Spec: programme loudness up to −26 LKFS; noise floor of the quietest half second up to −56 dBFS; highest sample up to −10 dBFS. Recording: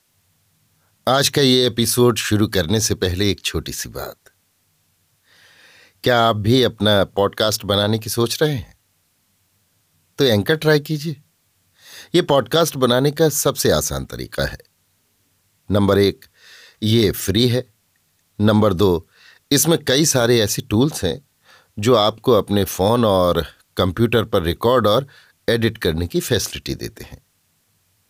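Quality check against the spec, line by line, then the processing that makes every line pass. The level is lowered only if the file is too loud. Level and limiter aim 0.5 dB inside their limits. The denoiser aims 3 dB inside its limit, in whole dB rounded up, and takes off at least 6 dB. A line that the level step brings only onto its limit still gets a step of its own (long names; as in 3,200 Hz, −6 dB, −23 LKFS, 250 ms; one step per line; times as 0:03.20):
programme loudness −18.0 LKFS: out of spec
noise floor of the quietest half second −64 dBFS: in spec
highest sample −4.5 dBFS: out of spec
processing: level −8.5 dB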